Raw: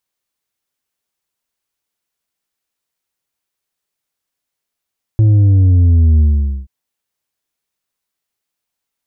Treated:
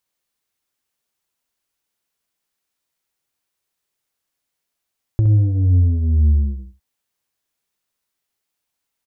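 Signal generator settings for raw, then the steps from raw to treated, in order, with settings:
sub drop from 110 Hz, over 1.48 s, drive 5 dB, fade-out 0.47 s, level -7 dB
compressor, threshold -15 dBFS; on a send: feedback echo 66 ms, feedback 15%, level -8 dB

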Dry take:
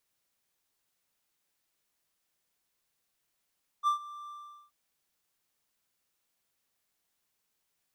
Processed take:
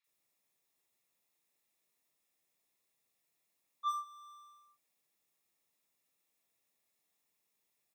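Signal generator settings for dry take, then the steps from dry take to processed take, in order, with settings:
ADSR triangle 1180 Hz, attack 43 ms, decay 0.109 s, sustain -19.5 dB, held 0.46 s, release 0.418 s -20 dBFS
notch comb 1500 Hz; three bands offset in time mids, highs, lows 40/70 ms, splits 1100/4600 Hz

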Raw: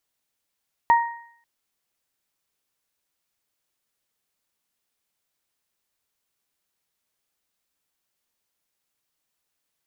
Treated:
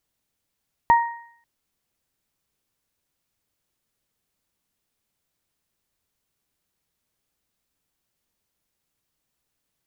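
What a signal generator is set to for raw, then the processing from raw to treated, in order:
additive tone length 0.54 s, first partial 935 Hz, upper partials -11 dB, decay 0.56 s, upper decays 0.73 s, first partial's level -10.5 dB
low shelf 320 Hz +11 dB

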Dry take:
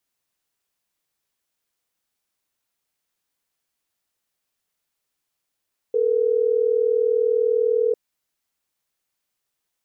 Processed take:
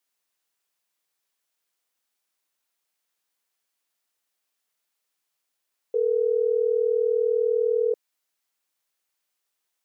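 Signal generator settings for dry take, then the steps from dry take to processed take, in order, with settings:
call progress tone ringback tone, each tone -19.5 dBFS
HPF 440 Hz 6 dB/oct

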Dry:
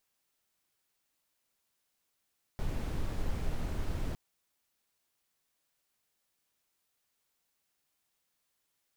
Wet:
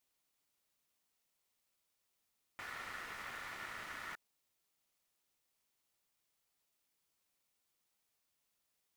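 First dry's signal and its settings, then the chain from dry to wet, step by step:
noise brown, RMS -32.5 dBFS 1.56 s
HPF 180 Hz 12 dB/oct; ring modulator 1600 Hz

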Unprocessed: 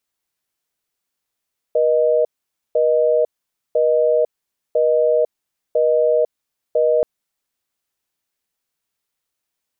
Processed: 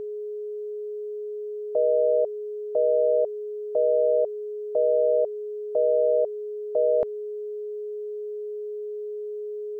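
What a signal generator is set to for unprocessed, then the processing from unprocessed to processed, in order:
call progress tone busy tone, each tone -15.5 dBFS 5.28 s
limiter -15 dBFS; whine 420 Hz -30 dBFS

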